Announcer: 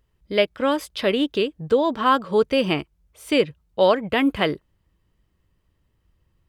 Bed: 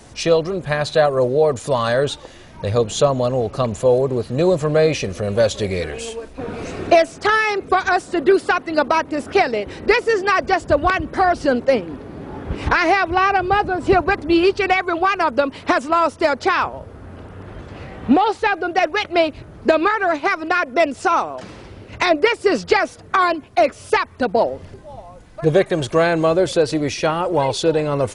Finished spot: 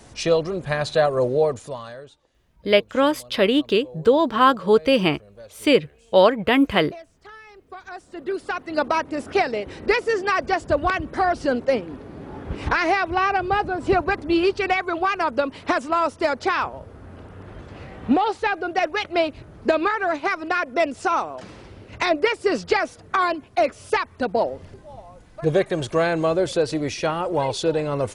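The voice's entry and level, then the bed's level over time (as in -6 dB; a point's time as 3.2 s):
2.35 s, +2.5 dB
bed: 1.43 s -3.5 dB
2.16 s -27.5 dB
7.48 s -27.5 dB
8.82 s -4.5 dB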